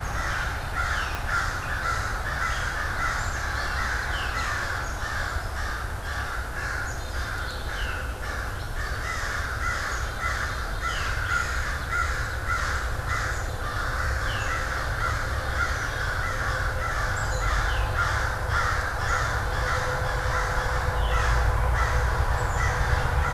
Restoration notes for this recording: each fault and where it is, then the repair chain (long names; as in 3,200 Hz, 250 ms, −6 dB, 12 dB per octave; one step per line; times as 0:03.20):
0:01.15: click −15 dBFS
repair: click removal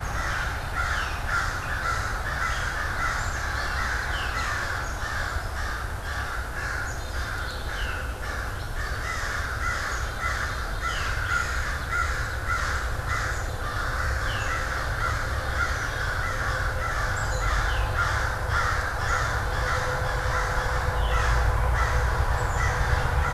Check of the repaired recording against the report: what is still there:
0:01.15: click